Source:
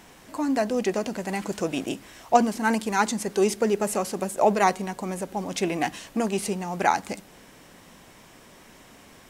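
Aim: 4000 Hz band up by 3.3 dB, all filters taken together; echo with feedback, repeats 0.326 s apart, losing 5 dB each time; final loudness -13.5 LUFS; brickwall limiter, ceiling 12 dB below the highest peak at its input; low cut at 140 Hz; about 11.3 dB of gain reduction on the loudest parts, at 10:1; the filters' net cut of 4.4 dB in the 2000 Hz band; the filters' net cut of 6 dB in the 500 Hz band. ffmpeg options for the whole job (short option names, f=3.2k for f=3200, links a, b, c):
-af "highpass=140,equalizer=f=500:t=o:g=-8,equalizer=f=2k:t=o:g=-7,equalizer=f=4k:t=o:g=6.5,acompressor=threshold=-29dB:ratio=10,alimiter=level_in=5.5dB:limit=-24dB:level=0:latency=1,volume=-5.5dB,aecho=1:1:326|652|978|1304|1630|1956|2282:0.562|0.315|0.176|0.0988|0.0553|0.031|0.0173,volume=24.5dB"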